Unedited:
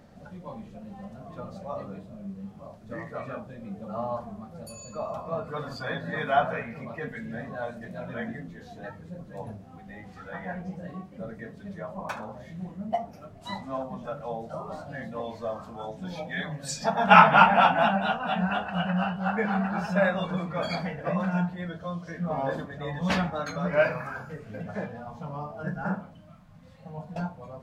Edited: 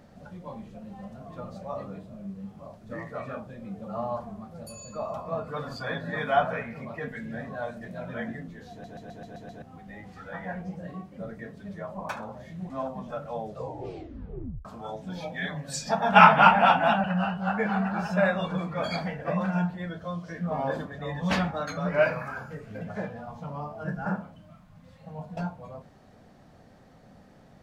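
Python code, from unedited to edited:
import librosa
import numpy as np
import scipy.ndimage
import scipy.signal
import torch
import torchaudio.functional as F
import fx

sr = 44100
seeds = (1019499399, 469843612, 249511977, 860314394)

y = fx.edit(x, sr, fx.stutter_over(start_s=8.71, slice_s=0.13, count=7),
    fx.cut(start_s=12.7, length_s=0.95),
    fx.tape_stop(start_s=14.36, length_s=1.24),
    fx.cut(start_s=17.99, length_s=0.84), tone=tone)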